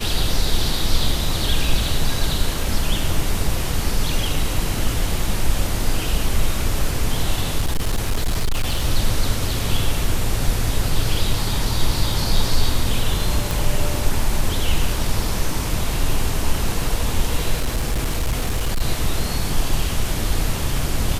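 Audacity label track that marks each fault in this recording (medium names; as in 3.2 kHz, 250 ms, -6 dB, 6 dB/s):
7.580000	8.860000	clipped -15 dBFS
13.510000	13.510000	pop
17.540000	18.820000	clipped -16 dBFS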